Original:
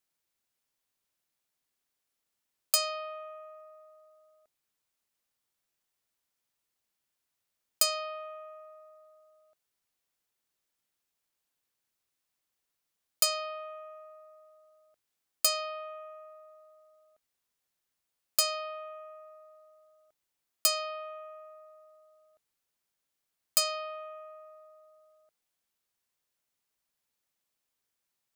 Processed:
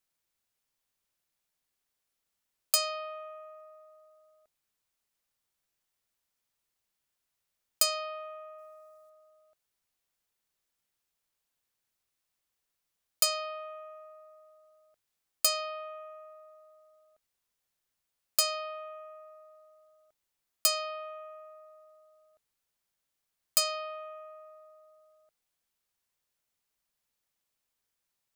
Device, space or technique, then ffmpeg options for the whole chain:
low shelf boost with a cut just above: -filter_complex "[0:a]asettb=1/sr,asplit=3[link_01][link_02][link_03];[link_01]atrim=end=8.584[link_04];[link_02]atrim=start=8.58:end=9.1,asetpts=PTS-STARTPTS,afade=type=in:duration=0.004:curve=qsin,afade=type=out:start_time=0.516:duration=0.004:curve=qsin,bass=frequency=250:gain=6,treble=frequency=4000:gain=7[link_05];[link_03]atrim=start=9.096[link_06];[link_04][link_05]acrossfade=duration=0.004:curve1=hsin:curve2=qsin[link_07];[link_07][link_06]acrossfade=duration=0.004:curve1=qsin:curve2=hsin,lowshelf=frequency=69:gain=6,equalizer=frequency=290:width_type=o:width=0.77:gain=-2"

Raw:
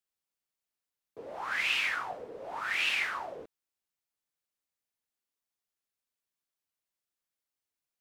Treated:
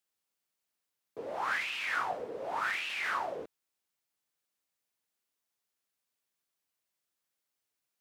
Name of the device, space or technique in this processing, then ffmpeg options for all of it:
de-esser from a sidechain: -filter_complex "[0:a]highpass=frequency=100:poles=1,asplit=2[link_01][link_02];[link_02]highpass=5700,apad=whole_len=352884[link_03];[link_01][link_03]sidechaincompress=threshold=-49dB:ratio=16:attack=0.6:release=29,volume=4dB"

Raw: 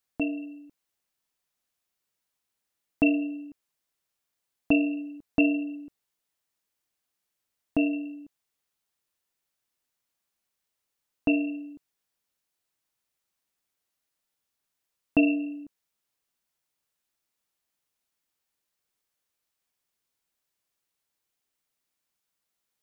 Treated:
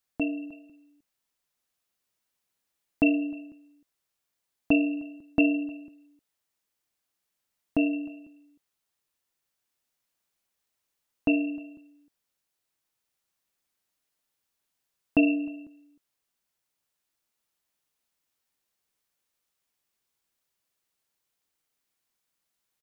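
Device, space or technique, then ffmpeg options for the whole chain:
ducked delay: -filter_complex "[0:a]asplit=3[link_01][link_02][link_03];[link_02]adelay=309,volume=-4.5dB[link_04];[link_03]apad=whole_len=1020077[link_05];[link_04][link_05]sidechaincompress=threshold=-44dB:ratio=4:attack=16:release=1350[link_06];[link_01][link_06]amix=inputs=2:normalize=0"

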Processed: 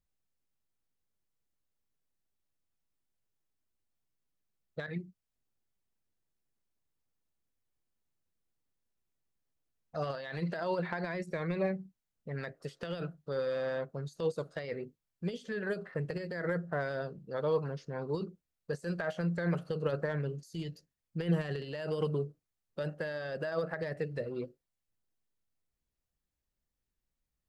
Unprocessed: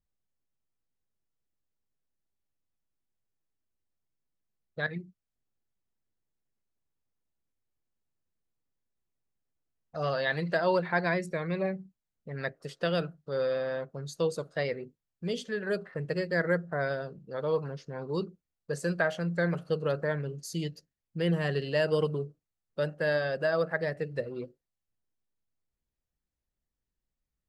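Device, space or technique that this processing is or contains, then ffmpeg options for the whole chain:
de-esser from a sidechain: -filter_complex "[0:a]asplit=2[link_01][link_02];[link_02]highpass=5600,apad=whole_len=1212170[link_03];[link_01][link_03]sidechaincompress=threshold=-57dB:ratio=10:attack=2.2:release=33"

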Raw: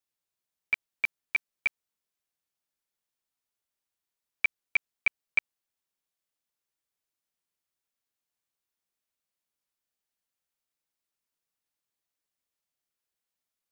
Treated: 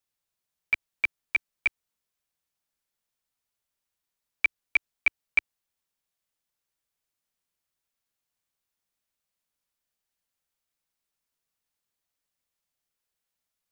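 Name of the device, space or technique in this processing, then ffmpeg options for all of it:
low shelf boost with a cut just above: -af "lowshelf=frequency=91:gain=5.5,equalizer=frequency=340:width_type=o:width=0.53:gain=-2.5,volume=2.5dB"

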